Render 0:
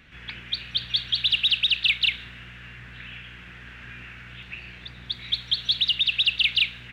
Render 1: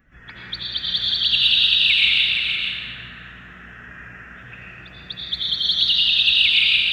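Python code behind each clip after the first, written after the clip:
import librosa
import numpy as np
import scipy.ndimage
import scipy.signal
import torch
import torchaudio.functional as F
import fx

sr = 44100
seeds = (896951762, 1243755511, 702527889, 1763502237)

y = fx.bin_expand(x, sr, power=1.5)
y = y + 10.0 ** (-6.0 / 20.0) * np.pad(y, (int(470 * sr / 1000.0), 0))[:len(y)]
y = fx.rev_freeverb(y, sr, rt60_s=1.5, hf_ratio=0.95, predelay_ms=50, drr_db=-4.5)
y = F.gain(torch.from_numpy(y), 2.5).numpy()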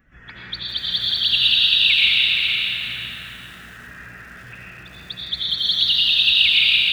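y = fx.echo_crushed(x, sr, ms=407, feedback_pct=35, bits=7, wet_db=-8.0)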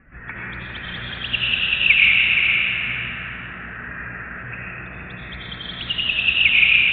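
y = scipy.signal.sosfilt(scipy.signal.ellip(4, 1.0, 50, 2500.0, 'lowpass', fs=sr, output='sos'), x)
y = F.gain(torch.from_numpy(y), 8.0).numpy()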